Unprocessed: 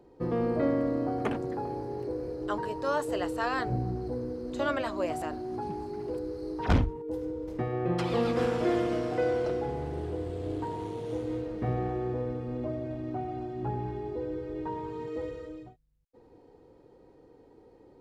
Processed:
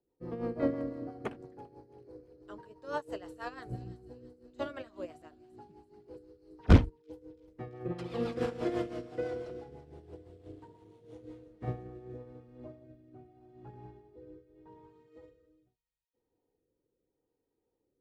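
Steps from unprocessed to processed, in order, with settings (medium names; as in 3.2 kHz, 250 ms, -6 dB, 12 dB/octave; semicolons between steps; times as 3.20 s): rotary cabinet horn 6 Hz, later 0.8 Hz, at 10.99 s; feedback echo behind a high-pass 336 ms, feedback 68%, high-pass 3.6 kHz, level -11 dB; upward expansion 2.5:1, over -41 dBFS; trim +7.5 dB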